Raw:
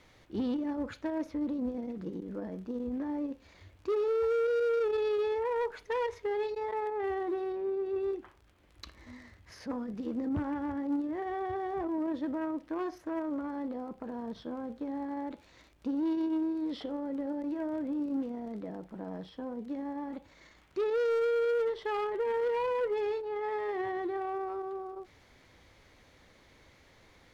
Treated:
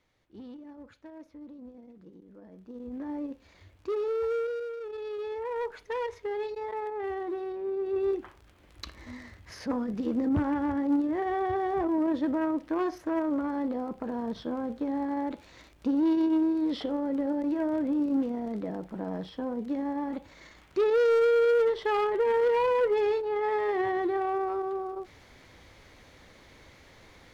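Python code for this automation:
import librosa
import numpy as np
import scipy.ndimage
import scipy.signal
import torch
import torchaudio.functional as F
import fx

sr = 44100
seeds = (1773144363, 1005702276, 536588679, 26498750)

y = fx.gain(x, sr, db=fx.line((2.39, -13.0), (3.1, -0.5), (4.37, -0.5), (4.77, -10.0), (5.64, -0.5), (7.58, -0.5), (8.15, 6.0)))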